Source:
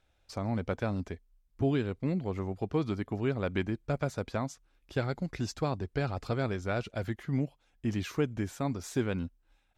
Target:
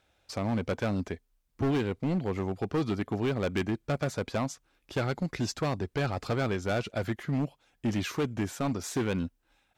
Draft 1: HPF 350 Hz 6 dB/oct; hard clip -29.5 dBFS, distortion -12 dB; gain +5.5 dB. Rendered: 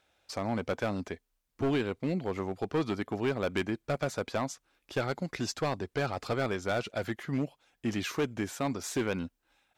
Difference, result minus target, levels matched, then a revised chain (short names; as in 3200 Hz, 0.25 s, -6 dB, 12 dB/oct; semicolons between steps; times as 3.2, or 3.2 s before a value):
125 Hz band -3.5 dB
HPF 130 Hz 6 dB/oct; hard clip -29.5 dBFS, distortion -10 dB; gain +5.5 dB